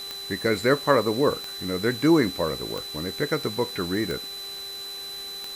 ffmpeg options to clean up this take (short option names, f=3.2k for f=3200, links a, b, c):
-af "adeclick=t=4,bandreject=f=394.6:t=h:w=4,bandreject=f=789.2:t=h:w=4,bandreject=f=1.1838k:t=h:w=4,bandreject=f=1.5784k:t=h:w=4,bandreject=f=1.973k:t=h:w=4,bandreject=f=4k:w=30,afwtdn=0.0071"